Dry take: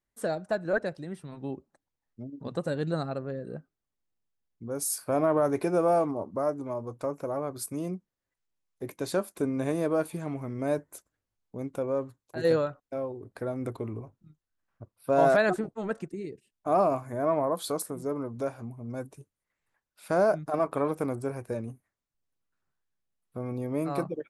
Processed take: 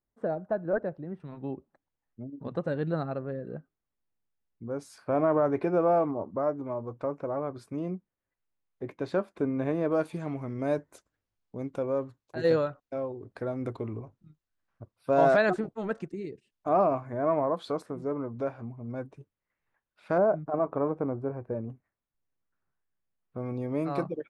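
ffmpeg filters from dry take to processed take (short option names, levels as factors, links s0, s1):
-af "asetnsamples=n=441:p=0,asendcmd='1.2 lowpass f 2500;9.92 lowpass f 5400;16.69 lowpass f 2800;20.18 lowpass f 1100;21.7 lowpass f 2300;23.38 lowpass f 5000',lowpass=1100"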